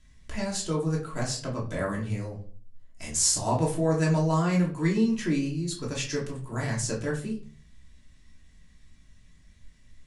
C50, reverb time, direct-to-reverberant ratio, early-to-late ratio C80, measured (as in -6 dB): 9.0 dB, 0.45 s, -4.0 dB, 14.0 dB